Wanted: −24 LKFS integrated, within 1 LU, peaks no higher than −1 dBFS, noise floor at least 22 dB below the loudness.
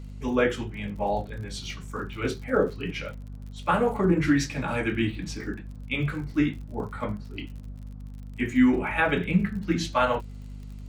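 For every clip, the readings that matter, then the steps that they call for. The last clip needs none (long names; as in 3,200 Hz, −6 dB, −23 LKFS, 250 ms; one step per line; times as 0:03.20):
crackle rate 55 per second; mains hum 50 Hz; hum harmonics up to 250 Hz; level of the hum −37 dBFS; integrated loudness −27.0 LKFS; sample peak −9.5 dBFS; target loudness −24.0 LKFS
→ click removal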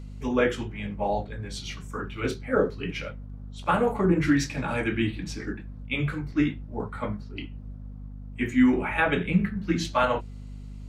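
crackle rate 0.18 per second; mains hum 50 Hz; hum harmonics up to 250 Hz; level of the hum −37 dBFS
→ mains-hum notches 50/100/150/200/250 Hz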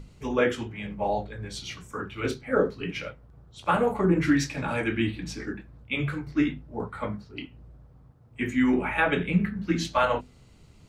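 mains hum none found; integrated loudness −27.5 LKFS; sample peak −9.0 dBFS; target loudness −24.0 LKFS
→ level +3.5 dB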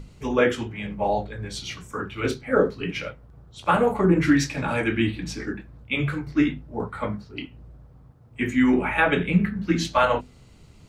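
integrated loudness −24.0 LKFS; sample peak −5.5 dBFS; background noise floor −51 dBFS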